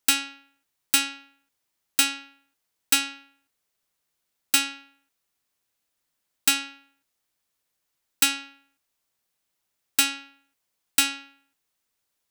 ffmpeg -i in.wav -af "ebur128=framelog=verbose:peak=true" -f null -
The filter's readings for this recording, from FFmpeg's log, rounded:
Integrated loudness:
  I:         -23.8 LUFS
  Threshold: -35.9 LUFS
Loudness range:
  LRA:         4.8 LU
  Threshold: -48.5 LUFS
  LRA low:   -31.5 LUFS
  LRA high:  -26.8 LUFS
True peak:
  Peak:       -4.9 dBFS